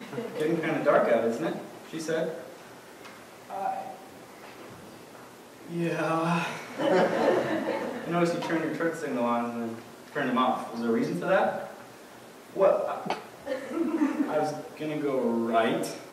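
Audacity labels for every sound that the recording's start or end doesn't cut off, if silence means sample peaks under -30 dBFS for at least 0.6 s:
3.520000	3.900000	sound
5.720000	11.660000	sound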